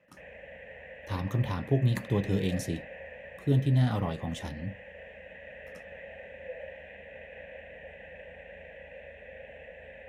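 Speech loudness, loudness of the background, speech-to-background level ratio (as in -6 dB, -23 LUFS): -30.0 LUFS, -45.5 LUFS, 15.5 dB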